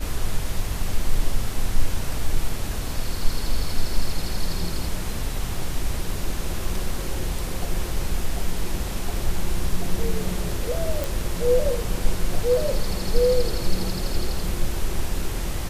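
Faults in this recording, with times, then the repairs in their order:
11.04 s: pop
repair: de-click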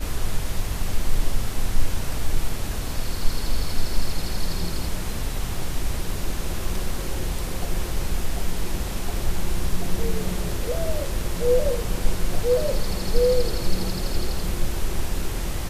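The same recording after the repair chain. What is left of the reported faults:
nothing left

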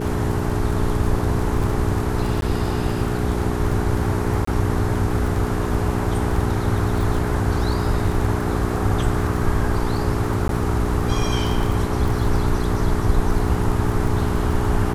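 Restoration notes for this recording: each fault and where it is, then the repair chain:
crackle 22 per s -25 dBFS
hum 60 Hz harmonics 7 -25 dBFS
2.41–2.42 s: dropout 12 ms
4.45–4.47 s: dropout 24 ms
10.48–10.49 s: dropout 12 ms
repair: de-click; de-hum 60 Hz, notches 7; interpolate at 2.41 s, 12 ms; interpolate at 4.45 s, 24 ms; interpolate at 10.48 s, 12 ms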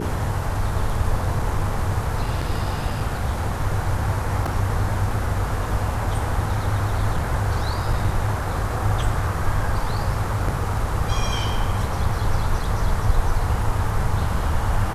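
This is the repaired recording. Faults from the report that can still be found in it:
nothing left

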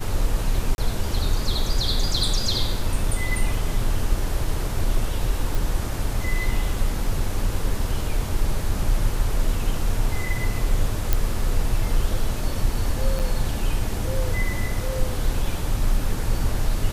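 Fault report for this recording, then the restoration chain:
0.75–0.78 s: dropout 31 ms
5.55 s: pop
11.13 s: pop
13.19–13.20 s: dropout 7.2 ms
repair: de-click; interpolate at 0.75 s, 31 ms; interpolate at 13.19 s, 7.2 ms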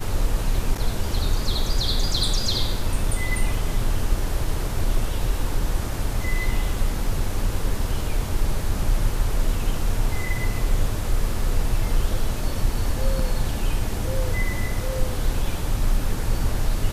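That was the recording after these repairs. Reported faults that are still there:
nothing left

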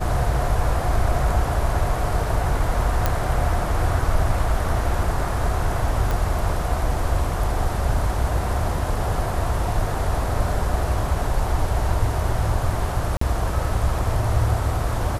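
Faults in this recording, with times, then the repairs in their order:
3.06 s: pop -6 dBFS
6.11 s: pop
13.17–13.21 s: dropout 44 ms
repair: de-click; interpolate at 13.17 s, 44 ms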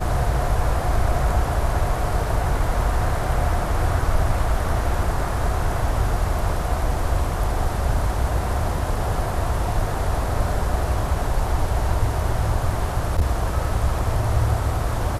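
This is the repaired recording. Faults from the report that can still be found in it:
nothing left

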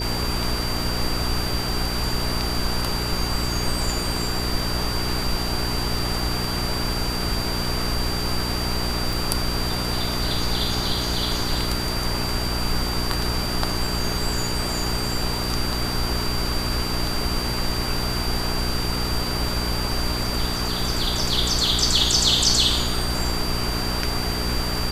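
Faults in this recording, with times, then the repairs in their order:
hum 60 Hz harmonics 7 -28 dBFS
whine 4.7 kHz -29 dBFS
9.13 s: pop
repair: de-click; band-stop 4.7 kHz, Q 30; de-hum 60 Hz, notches 7

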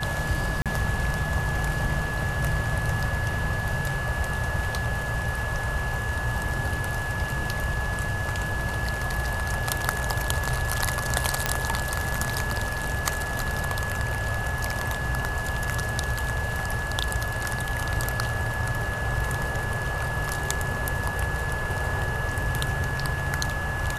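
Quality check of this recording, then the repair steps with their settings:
whine 1.7 kHz -31 dBFS
0.62–0.66 s: dropout 37 ms
11.46 s: pop -5 dBFS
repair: de-click; band-stop 1.7 kHz, Q 30; interpolate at 0.62 s, 37 ms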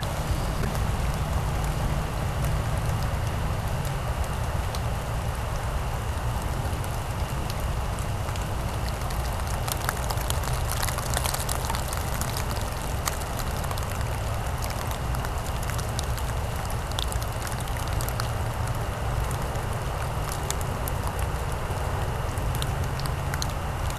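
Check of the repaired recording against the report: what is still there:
nothing left

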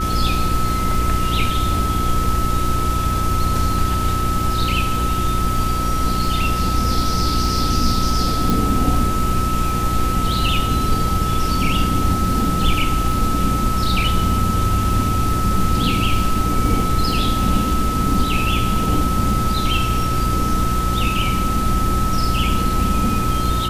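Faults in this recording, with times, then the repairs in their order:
crackle 47 per s -27 dBFS
hum 60 Hz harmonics 6 -23 dBFS
whine 1.3 kHz -22 dBFS
8.50 s: pop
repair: de-click; de-hum 60 Hz, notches 6; band-stop 1.3 kHz, Q 30

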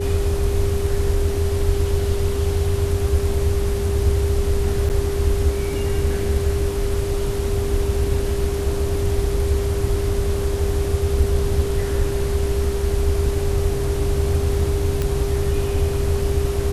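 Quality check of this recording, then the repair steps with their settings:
whine 400 Hz -24 dBFS
4.89–4.90 s: dropout 8.7 ms
15.02 s: pop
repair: de-click; band-stop 400 Hz, Q 30; interpolate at 4.89 s, 8.7 ms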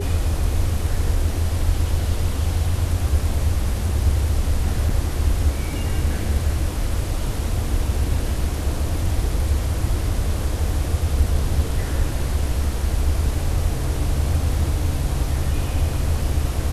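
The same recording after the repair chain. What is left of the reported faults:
nothing left

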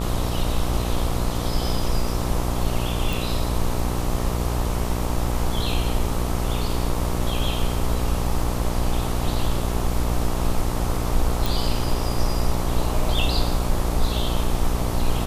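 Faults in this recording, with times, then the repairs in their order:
buzz 60 Hz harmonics 22 -26 dBFS
3.13 s: pop
11.46 s: pop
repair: de-click; de-hum 60 Hz, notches 22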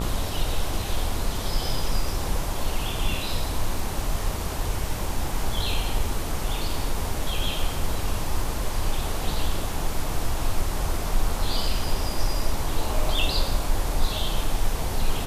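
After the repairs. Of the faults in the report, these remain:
nothing left

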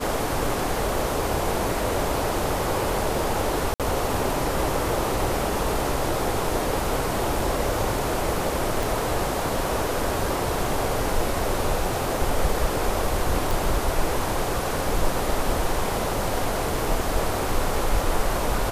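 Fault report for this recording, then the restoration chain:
3.74–3.80 s: dropout 57 ms
8.83 s: pop
13.51 s: pop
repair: de-click; interpolate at 3.74 s, 57 ms

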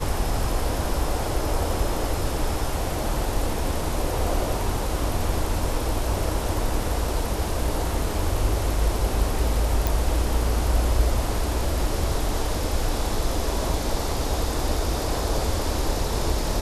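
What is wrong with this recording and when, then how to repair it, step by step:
9.87 s: pop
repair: de-click

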